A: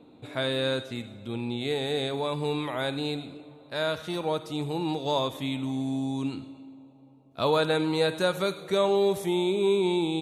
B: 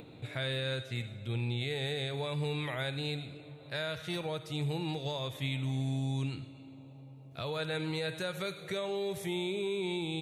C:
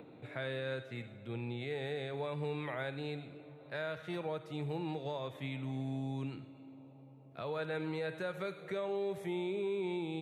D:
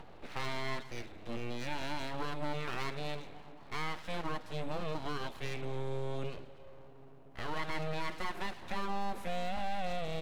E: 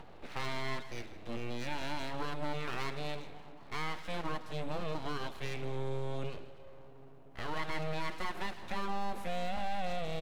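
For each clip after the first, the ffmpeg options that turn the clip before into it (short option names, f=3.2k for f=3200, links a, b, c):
-af "alimiter=limit=-22.5dB:level=0:latency=1:release=253,equalizer=f=125:t=o:w=1:g=9,equalizer=f=250:t=o:w=1:g=-9,equalizer=f=1k:t=o:w=1:g=-7,equalizer=f=2k:t=o:w=1:g=6,acompressor=mode=upward:threshold=-41dB:ratio=2.5,volume=-2dB"
-filter_complex "[0:a]acrossover=split=160 2200:gain=0.224 1 0.2[a][b][c];[a][b][c]amix=inputs=3:normalize=0,volume=-1dB"
-af "aeval=exprs='abs(val(0))':c=same,volume=4dB"
-af "aecho=1:1:158:0.141"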